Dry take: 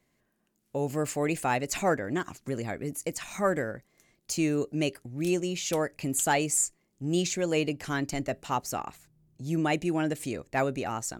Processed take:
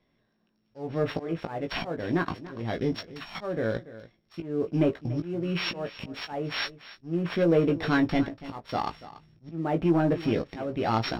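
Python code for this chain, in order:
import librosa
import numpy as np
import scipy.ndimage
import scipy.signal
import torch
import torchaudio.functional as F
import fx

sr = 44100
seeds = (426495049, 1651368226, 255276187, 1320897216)

p1 = np.r_[np.sort(x[:len(x) // 8 * 8].reshape(-1, 8), axis=1).ravel(), x[len(x) // 8 * 8:]]
p2 = scipy.signal.sosfilt(scipy.signal.butter(4, 4200.0, 'lowpass', fs=sr, output='sos'), p1)
p3 = fx.level_steps(p2, sr, step_db=22)
p4 = p2 + (p3 * 10.0 ** (-1.5 / 20.0))
p5 = fx.env_lowpass_down(p4, sr, base_hz=1100.0, full_db=-21.5)
p6 = fx.auto_swell(p5, sr, attack_ms=420.0)
p7 = fx.leveller(p6, sr, passes=1)
p8 = fx.doubler(p7, sr, ms=18.0, db=-5.5)
p9 = p8 + fx.echo_single(p8, sr, ms=287, db=-16.5, dry=0)
y = p9 * 10.0 ** (2.0 / 20.0)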